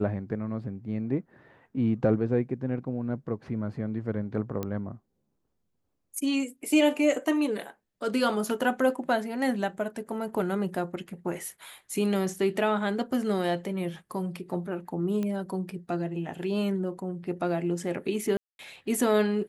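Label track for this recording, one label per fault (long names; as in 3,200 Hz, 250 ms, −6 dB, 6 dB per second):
4.630000	4.630000	click −18 dBFS
15.230000	15.230000	click −20 dBFS
18.370000	18.590000	drop-out 221 ms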